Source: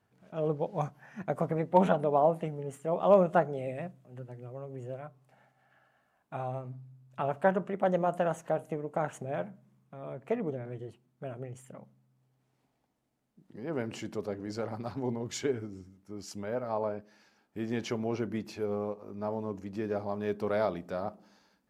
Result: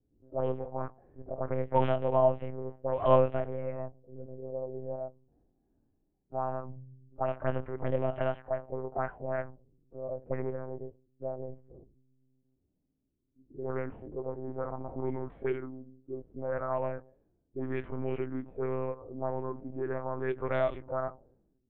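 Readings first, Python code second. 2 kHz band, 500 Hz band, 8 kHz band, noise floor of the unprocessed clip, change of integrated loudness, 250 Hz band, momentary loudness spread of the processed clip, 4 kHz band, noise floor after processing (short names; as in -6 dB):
-2.5 dB, -0.5 dB, under -30 dB, -75 dBFS, -1.5 dB, -4.0 dB, 16 LU, n/a, -78 dBFS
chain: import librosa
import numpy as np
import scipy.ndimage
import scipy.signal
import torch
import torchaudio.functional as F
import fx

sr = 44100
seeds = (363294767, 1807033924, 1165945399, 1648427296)

y = fx.lpc_monotone(x, sr, seeds[0], pitch_hz=130.0, order=8)
y = fx.hpss(y, sr, part='percussive', gain_db=-18)
y = fx.envelope_lowpass(y, sr, base_hz=300.0, top_hz=3000.0, q=2.6, full_db=-28.5, direction='up')
y = y * 10.0 ** (1.5 / 20.0)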